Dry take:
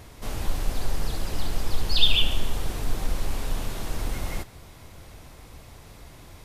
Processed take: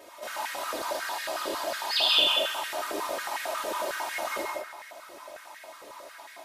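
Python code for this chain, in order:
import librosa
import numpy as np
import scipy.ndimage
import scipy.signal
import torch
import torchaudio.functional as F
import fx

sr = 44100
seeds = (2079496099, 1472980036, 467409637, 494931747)

y = x + 0.97 * np.pad(x, (int(3.2 * sr / 1000.0), 0))[:len(x)]
y = fx.echo_wet_lowpass(y, sr, ms=84, feedback_pct=61, hz=1500.0, wet_db=-4)
y = fx.rev_gated(y, sr, seeds[0], gate_ms=230, shape='flat', drr_db=-2.5)
y = fx.filter_held_highpass(y, sr, hz=11.0, low_hz=470.0, high_hz=1800.0)
y = F.gain(torch.from_numpy(y), -6.0).numpy()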